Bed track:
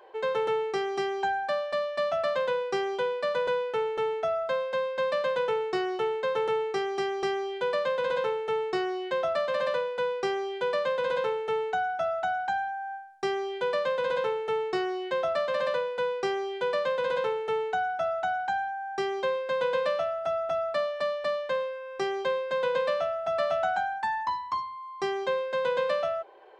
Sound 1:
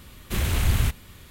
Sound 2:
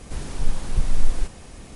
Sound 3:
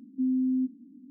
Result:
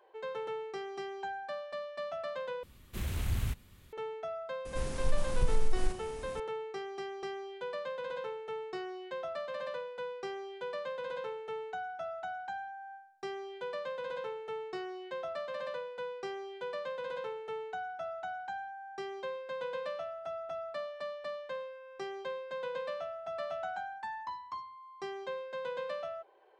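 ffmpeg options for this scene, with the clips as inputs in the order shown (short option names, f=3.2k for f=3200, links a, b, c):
-filter_complex "[0:a]volume=-11dB[a];[1:a]lowshelf=f=410:g=3.5[b];[2:a]acompressor=threshold=-14dB:ratio=6:attack=3.2:release=140:knee=1:detection=peak[c];[a]asplit=2[d][e];[d]atrim=end=2.634[f];[b]atrim=end=1.3,asetpts=PTS-STARTPTS,volume=-14dB[g];[e]atrim=start=3.926[h];[c]atrim=end=1.75,asetpts=PTS-STARTPTS,volume=-5.5dB,afade=t=in:d=0.004:c=hsin,afade=t=out:st=1.746:d=0.004:c=hsin,adelay=205065S[i];[f][g]acrossfade=d=0.004:c1=hsin:c2=hsin[j];[j][h]acrossfade=d=0.004:c1=hsin:c2=hsin[k];[k][i]amix=inputs=2:normalize=0"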